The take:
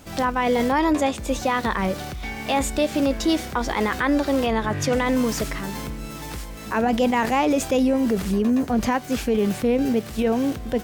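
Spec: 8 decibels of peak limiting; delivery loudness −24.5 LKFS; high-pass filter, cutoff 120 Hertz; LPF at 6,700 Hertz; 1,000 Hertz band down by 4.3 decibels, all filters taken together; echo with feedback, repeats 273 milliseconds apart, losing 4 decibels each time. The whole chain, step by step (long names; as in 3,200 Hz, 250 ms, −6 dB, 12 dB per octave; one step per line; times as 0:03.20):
high-pass filter 120 Hz
low-pass filter 6,700 Hz
parametric band 1,000 Hz −5.5 dB
brickwall limiter −19 dBFS
repeating echo 273 ms, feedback 63%, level −4 dB
level +1.5 dB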